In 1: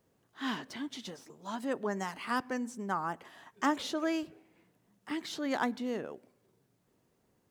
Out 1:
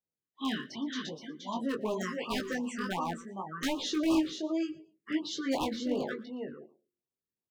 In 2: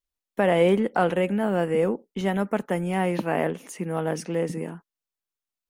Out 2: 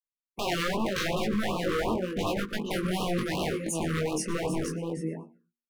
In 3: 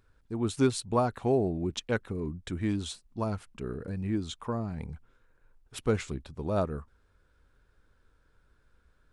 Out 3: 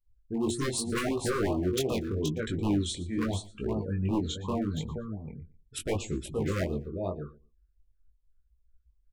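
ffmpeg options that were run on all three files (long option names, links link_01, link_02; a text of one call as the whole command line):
ffmpeg -i in.wav -filter_complex "[0:a]afftdn=noise_reduction=31:noise_floor=-47,adynamicequalizer=threshold=0.0112:dfrequency=350:dqfactor=3.5:tfrequency=350:tqfactor=3.5:attack=5:release=100:ratio=0.375:range=2.5:mode=boostabove:tftype=bell,acompressor=threshold=-29dB:ratio=1.5,bandreject=frequency=118.1:width_type=h:width=4,bandreject=frequency=236.2:width_type=h:width=4,bandreject=frequency=354.3:width_type=h:width=4,asplit=2[link_01][link_02];[link_02]aecho=0:1:473:0.473[link_03];[link_01][link_03]amix=inputs=2:normalize=0,aeval=exprs='0.0501*(abs(mod(val(0)/0.0501+3,4)-2)-1)':channel_layout=same,highshelf=frequency=9200:gain=10,asplit=2[link_04][link_05];[link_05]adelay=13,volume=-13.5dB[link_06];[link_04][link_06]amix=inputs=2:normalize=0,asplit=2[link_07][link_08];[link_08]aecho=0:1:117|234:0.1|0.019[link_09];[link_07][link_09]amix=inputs=2:normalize=0,flanger=delay=18.5:depth=4.4:speed=0.8,acontrast=54,afftfilt=real='re*(1-between(b*sr/1024,710*pow(1800/710,0.5+0.5*sin(2*PI*2.7*pts/sr))/1.41,710*pow(1800/710,0.5+0.5*sin(2*PI*2.7*pts/sr))*1.41))':imag='im*(1-between(b*sr/1024,710*pow(1800/710,0.5+0.5*sin(2*PI*2.7*pts/sr))/1.41,710*pow(1800/710,0.5+0.5*sin(2*PI*2.7*pts/sr))*1.41))':win_size=1024:overlap=0.75" out.wav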